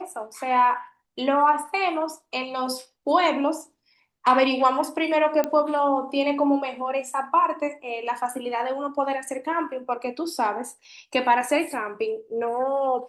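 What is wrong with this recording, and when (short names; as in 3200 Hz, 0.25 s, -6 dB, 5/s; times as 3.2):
5.44 pop -11 dBFS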